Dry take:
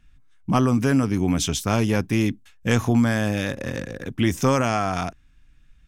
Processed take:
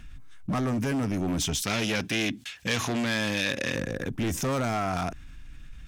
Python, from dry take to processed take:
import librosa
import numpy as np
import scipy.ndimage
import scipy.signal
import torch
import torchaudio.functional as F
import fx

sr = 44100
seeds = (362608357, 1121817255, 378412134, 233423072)

y = np.clip(x, -10.0 ** (-20.0 / 20.0), 10.0 ** (-20.0 / 20.0))
y = fx.weighting(y, sr, curve='D', at=(1.62, 3.75))
y = fx.env_flatten(y, sr, amount_pct=50)
y = y * librosa.db_to_amplitude(-5.5)